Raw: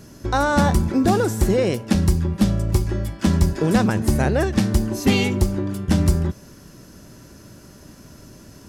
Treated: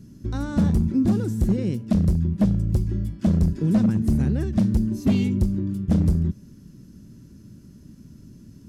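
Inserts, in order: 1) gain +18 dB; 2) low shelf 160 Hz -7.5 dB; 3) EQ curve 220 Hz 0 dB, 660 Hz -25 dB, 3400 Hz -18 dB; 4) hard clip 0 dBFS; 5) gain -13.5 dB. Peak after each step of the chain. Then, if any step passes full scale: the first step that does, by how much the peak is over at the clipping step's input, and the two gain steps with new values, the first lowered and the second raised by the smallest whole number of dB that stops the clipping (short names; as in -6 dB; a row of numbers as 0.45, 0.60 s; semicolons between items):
+11.5, +11.5, +7.5, 0.0, -13.5 dBFS; step 1, 7.5 dB; step 1 +10 dB, step 5 -5.5 dB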